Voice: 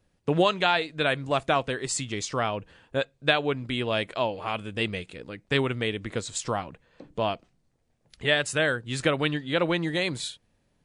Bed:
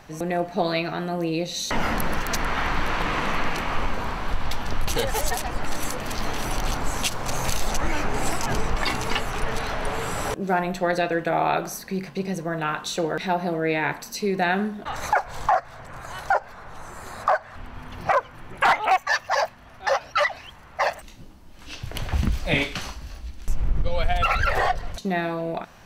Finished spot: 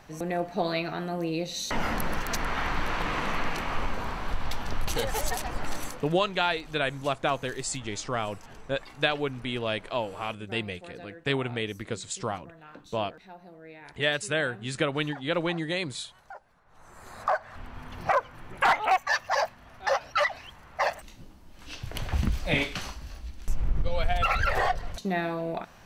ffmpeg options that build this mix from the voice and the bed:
-filter_complex "[0:a]adelay=5750,volume=-3dB[a];[1:a]volume=15.5dB,afade=t=out:st=5.71:d=0.41:silence=0.112202,afade=t=in:st=16.65:d=0.84:silence=0.1[b];[a][b]amix=inputs=2:normalize=0"

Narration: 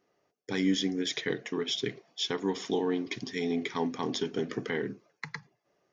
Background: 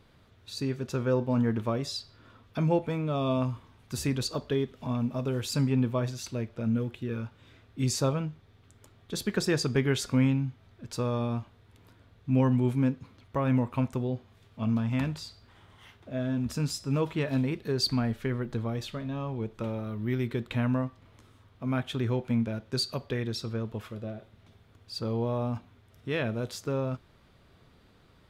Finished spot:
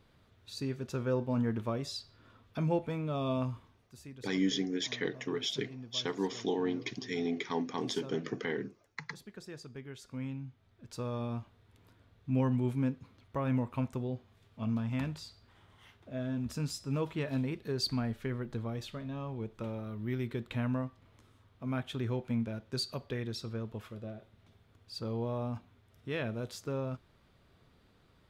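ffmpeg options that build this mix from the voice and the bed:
-filter_complex "[0:a]adelay=3750,volume=-3dB[a];[1:a]volume=9.5dB,afade=t=out:st=3.61:d=0.31:silence=0.177828,afade=t=in:st=9.98:d=1.47:silence=0.188365[b];[a][b]amix=inputs=2:normalize=0"

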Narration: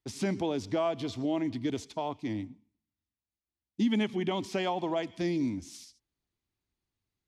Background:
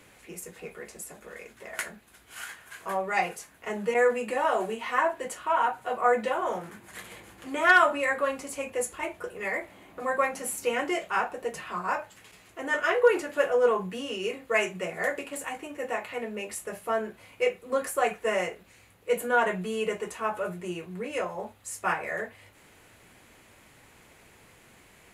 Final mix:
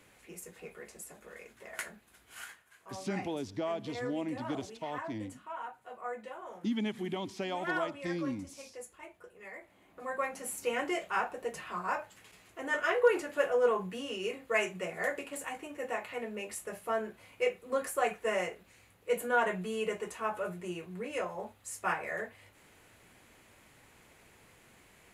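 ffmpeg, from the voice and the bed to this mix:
-filter_complex "[0:a]adelay=2850,volume=-5.5dB[a];[1:a]volume=6dB,afade=t=out:st=2.43:d=0.21:silence=0.298538,afade=t=in:st=9.54:d=1.26:silence=0.251189[b];[a][b]amix=inputs=2:normalize=0"

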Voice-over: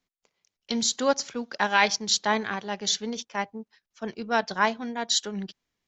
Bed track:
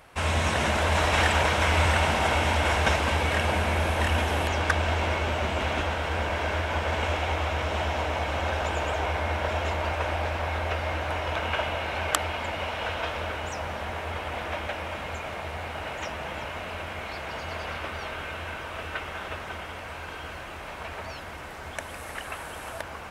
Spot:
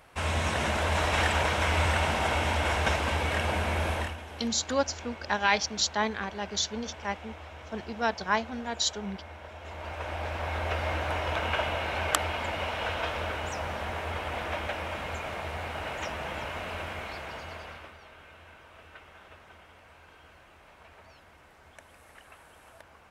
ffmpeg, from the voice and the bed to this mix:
-filter_complex "[0:a]adelay=3700,volume=-3.5dB[a];[1:a]volume=12.5dB,afade=t=out:st=3.93:d=0.23:silence=0.211349,afade=t=in:st=9.59:d=1.25:silence=0.158489,afade=t=out:st=16.83:d=1.15:silence=0.16788[b];[a][b]amix=inputs=2:normalize=0"

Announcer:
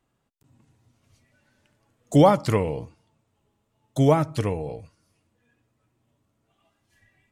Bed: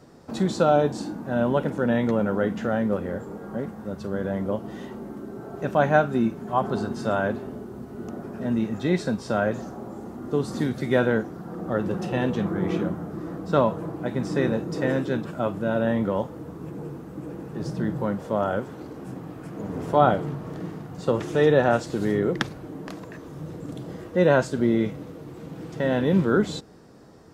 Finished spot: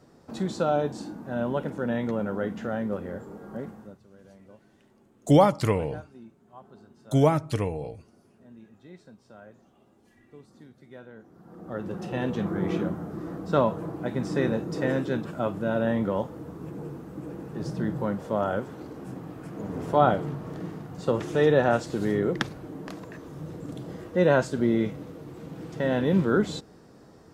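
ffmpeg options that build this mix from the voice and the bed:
-filter_complex "[0:a]adelay=3150,volume=-2dB[a];[1:a]volume=17.5dB,afade=t=out:st=3.71:d=0.29:silence=0.105925,afade=t=in:st=11.16:d=1.41:silence=0.0707946[b];[a][b]amix=inputs=2:normalize=0"

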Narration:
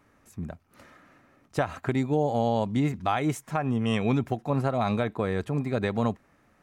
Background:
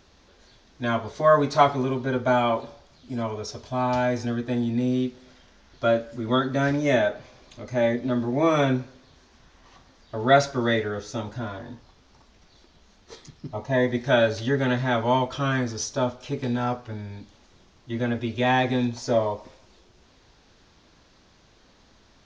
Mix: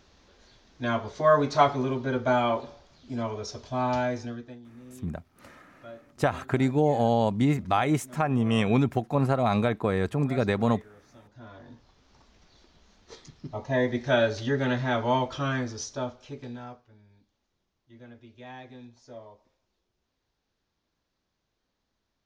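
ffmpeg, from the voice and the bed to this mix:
-filter_complex "[0:a]adelay=4650,volume=2dB[a];[1:a]volume=18dB,afade=t=out:st=3.93:d=0.66:silence=0.0891251,afade=t=in:st=11.27:d=0.94:silence=0.0944061,afade=t=out:st=15.33:d=1.55:silence=0.105925[b];[a][b]amix=inputs=2:normalize=0"

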